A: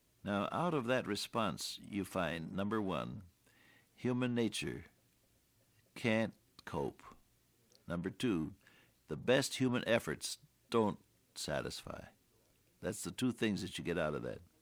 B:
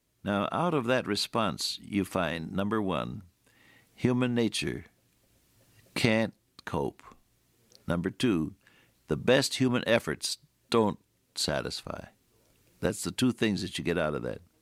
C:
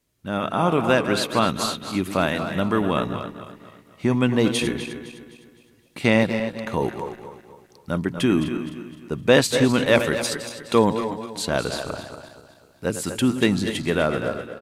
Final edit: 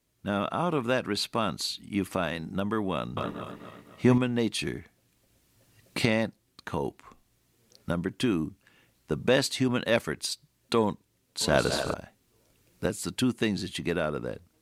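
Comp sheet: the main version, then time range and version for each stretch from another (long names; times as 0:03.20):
B
0:03.17–0:04.18: punch in from C
0:11.41–0:11.94: punch in from C
not used: A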